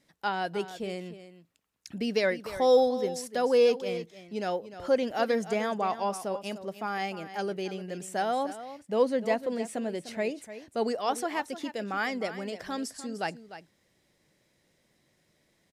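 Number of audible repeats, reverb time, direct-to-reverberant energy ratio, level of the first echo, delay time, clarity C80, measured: 1, no reverb, no reverb, -13.0 dB, 300 ms, no reverb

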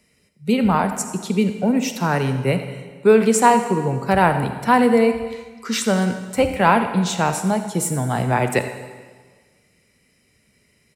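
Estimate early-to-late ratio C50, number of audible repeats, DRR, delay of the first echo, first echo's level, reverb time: 8.5 dB, 1, 8.0 dB, 86 ms, -15.5 dB, 1.5 s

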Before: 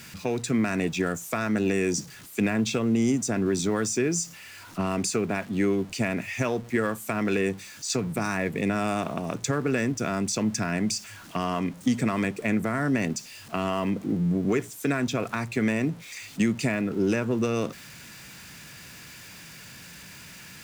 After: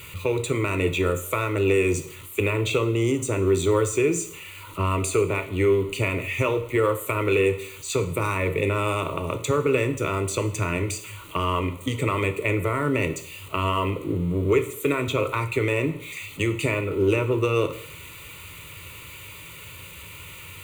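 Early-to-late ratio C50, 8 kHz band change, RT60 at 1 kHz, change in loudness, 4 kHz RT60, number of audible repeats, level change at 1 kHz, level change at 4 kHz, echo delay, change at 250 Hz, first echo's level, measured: 13.0 dB, -1.0 dB, 0.65 s, +2.5 dB, 0.65 s, no echo, +4.0 dB, +2.0 dB, no echo, -2.5 dB, no echo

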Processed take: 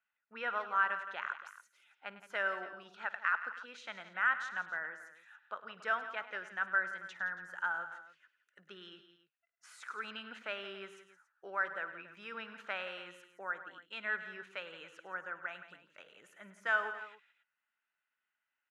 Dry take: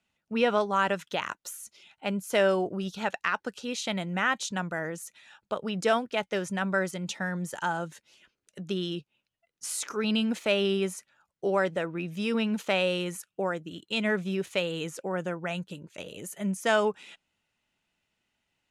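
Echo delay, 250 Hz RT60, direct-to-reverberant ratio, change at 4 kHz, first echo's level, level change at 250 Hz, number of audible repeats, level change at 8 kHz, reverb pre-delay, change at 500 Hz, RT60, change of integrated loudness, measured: 54 ms, no reverb, no reverb, -15.0 dB, -19.5 dB, -26.5 dB, 4, -24.5 dB, no reverb, -18.0 dB, no reverb, -8.5 dB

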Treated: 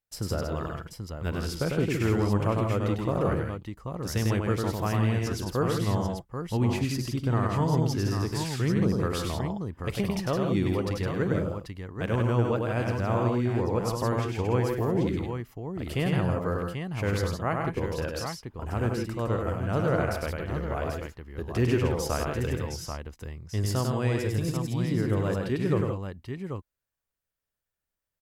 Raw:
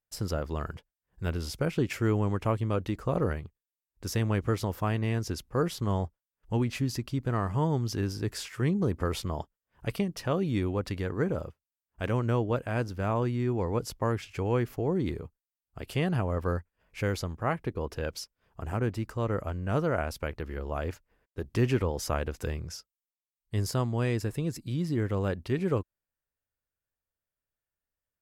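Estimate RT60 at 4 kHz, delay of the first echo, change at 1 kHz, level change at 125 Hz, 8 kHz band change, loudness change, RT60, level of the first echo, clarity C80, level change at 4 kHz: no reverb, 49 ms, +3.0 dB, +3.0 dB, +3.0 dB, +2.5 dB, no reverb, -19.5 dB, no reverb, +3.0 dB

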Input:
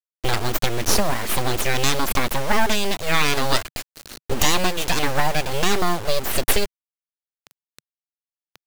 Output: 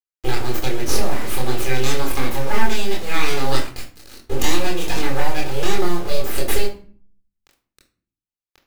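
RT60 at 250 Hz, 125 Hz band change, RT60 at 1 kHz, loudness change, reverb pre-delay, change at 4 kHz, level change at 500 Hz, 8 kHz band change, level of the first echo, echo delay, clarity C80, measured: 0.75 s, +0.5 dB, 0.45 s, -2.0 dB, 22 ms, -3.5 dB, +0.5 dB, -4.0 dB, no echo, no echo, 14.0 dB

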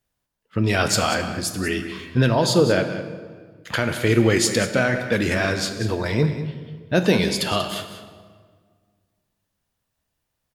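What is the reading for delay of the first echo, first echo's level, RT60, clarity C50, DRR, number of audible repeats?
189 ms, -12.0 dB, 1.7 s, 8.0 dB, 7.0 dB, 1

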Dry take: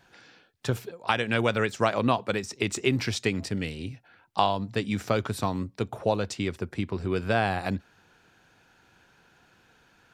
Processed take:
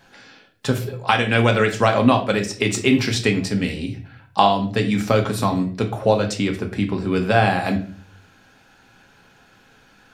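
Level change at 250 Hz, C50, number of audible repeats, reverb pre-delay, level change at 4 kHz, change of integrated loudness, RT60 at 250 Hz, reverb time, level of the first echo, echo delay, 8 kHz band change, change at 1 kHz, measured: +9.5 dB, 11.0 dB, no echo, 4 ms, +7.5 dB, +8.5 dB, 0.60 s, 0.45 s, no echo, no echo, +7.5 dB, +8.5 dB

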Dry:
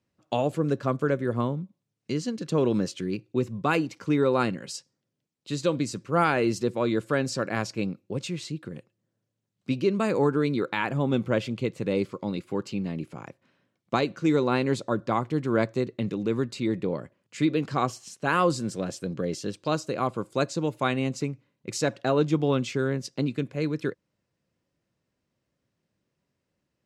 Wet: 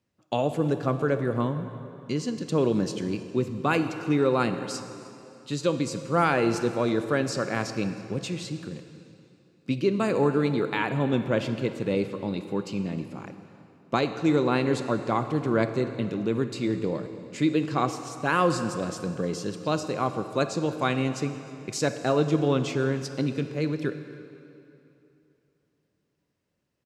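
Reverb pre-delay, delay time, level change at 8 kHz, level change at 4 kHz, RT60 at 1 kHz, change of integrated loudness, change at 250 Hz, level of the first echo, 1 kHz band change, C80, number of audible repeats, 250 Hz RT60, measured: 21 ms, 312 ms, +0.5 dB, +0.5 dB, 2.8 s, +0.5 dB, +0.5 dB, -23.0 dB, +0.5 dB, 10.0 dB, 1, 2.9 s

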